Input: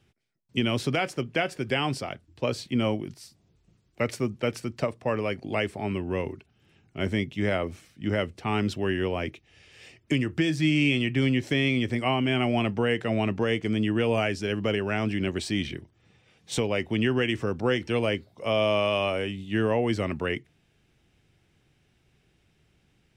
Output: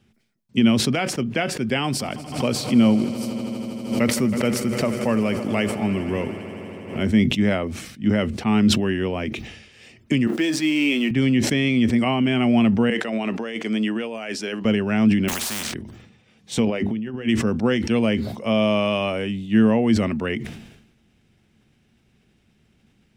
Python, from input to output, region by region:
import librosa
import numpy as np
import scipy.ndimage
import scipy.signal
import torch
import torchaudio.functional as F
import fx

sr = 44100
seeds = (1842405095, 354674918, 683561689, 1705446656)

y = fx.chain(x, sr, fx.high_shelf(hz=9400.0, db=12.0),
    fx.echo_swell(ms=80, loudest=5, wet_db=-18.0),
    fx.pre_swell(db_per_s=96.0), at=(1.84, 7.03))
y = fx.chain(y, sr, fx.law_mismatch(coded='mu'),
    fx.highpass(hz=250.0, slope=24), at=(10.27, 11.11))
y = fx.chain(y, sr, fx.highpass(hz=430.0, slope=12),
    fx.over_compress(threshold_db=-32.0, ratio=-1.0), at=(12.9, 14.65))
y = fx.chain(y, sr, fx.block_float(bits=7),
    fx.room_flutter(wall_m=8.2, rt60_s=0.2),
    fx.spectral_comp(ratio=10.0), at=(15.28, 15.74))
y = fx.chain(y, sr, fx.high_shelf(hz=3000.0, db=-7.0),
    fx.hum_notches(base_hz=50, count=8),
    fx.over_compress(threshold_db=-32.0, ratio=-0.5), at=(16.65, 17.29))
y = fx.peak_eq(y, sr, hz=220.0, db=13.0, octaves=0.33)
y = fx.sustainer(y, sr, db_per_s=61.0)
y = F.gain(torch.from_numpy(y), 2.0).numpy()